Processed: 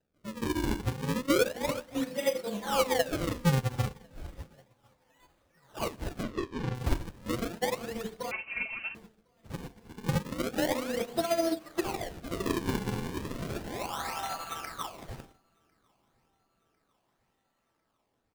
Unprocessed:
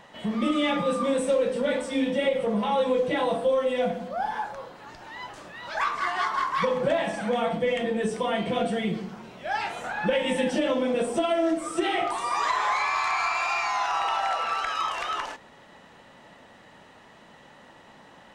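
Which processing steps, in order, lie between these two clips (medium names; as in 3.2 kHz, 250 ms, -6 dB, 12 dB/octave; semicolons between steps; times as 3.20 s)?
bass shelf 74 Hz -11.5 dB; decimation with a swept rate 39×, swing 160% 0.33 Hz; 6.23–6.75 s: distance through air 120 m; feedback delay 1050 ms, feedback 58%, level -16 dB; Schroeder reverb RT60 0.95 s, combs from 29 ms, DRR 13 dB; 8.31–8.95 s: frequency inversion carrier 2.9 kHz; upward expansion 2.5:1, over -39 dBFS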